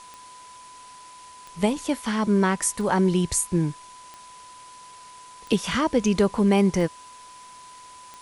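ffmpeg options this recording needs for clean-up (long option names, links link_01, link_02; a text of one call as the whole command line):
ffmpeg -i in.wav -af "adeclick=threshold=4,bandreject=frequency=1000:width=30,afwtdn=0.004" out.wav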